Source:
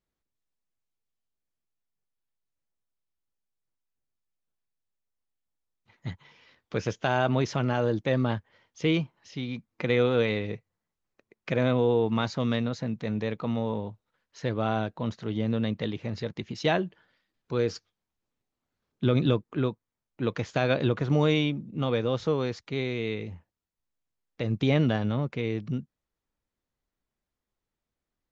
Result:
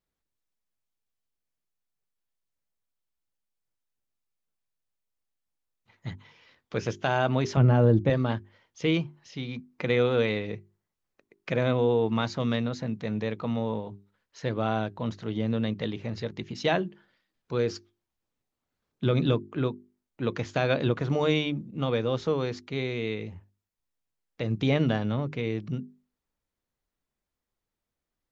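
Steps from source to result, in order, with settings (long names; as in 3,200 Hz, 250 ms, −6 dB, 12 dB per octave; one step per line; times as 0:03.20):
0:07.57–0:08.10: spectral tilt −3.5 dB per octave
mains-hum notches 50/100/150/200/250/300/350/400 Hz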